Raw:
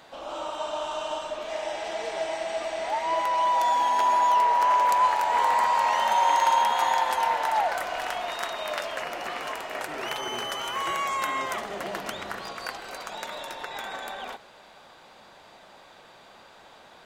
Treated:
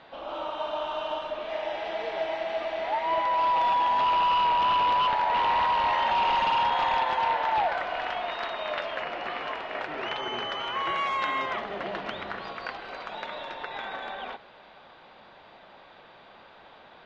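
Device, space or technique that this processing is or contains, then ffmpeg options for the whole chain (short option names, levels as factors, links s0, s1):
synthesiser wavefolder: -filter_complex "[0:a]aeval=exprs='0.112*(abs(mod(val(0)/0.112+3,4)-2)-1)':c=same,lowpass=f=3800:w=0.5412,lowpass=f=3800:w=1.3066,asettb=1/sr,asplit=3[s0][s1][s2];[s0]atrim=end=10.964[s3];[s1]atrim=start=10.96:end=11.46,asetpts=PTS-STARTPTS,afade=t=in:d=0.004:c=qsin,afade=t=out:st=0.496:d=0.004:c=qsin,aemphasis=mode=production:type=cd[s4];[s2]atrim=start=11.456[s5];[s3][s4]acrossfade=d=0.004:c1=hsin:c2=qsin[s6];[s6][s5]acrossfade=d=0.004:c1=qsin:c2=hsin"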